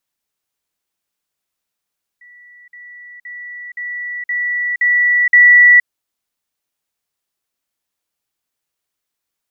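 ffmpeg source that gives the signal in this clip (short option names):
-f lavfi -i "aevalsrc='pow(10,(-40+6*floor(t/0.52))/20)*sin(2*PI*1950*t)*clip(min(mod(t,0.52),0.47-mod(t,0.52))/0.005,0,1)':d=3.64:s=44100"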